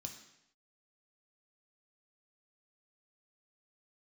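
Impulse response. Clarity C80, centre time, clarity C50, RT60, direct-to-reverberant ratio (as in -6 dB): 10.0 dB, 23 ms, 7.5 dB, 0.80 s, 2.0 dB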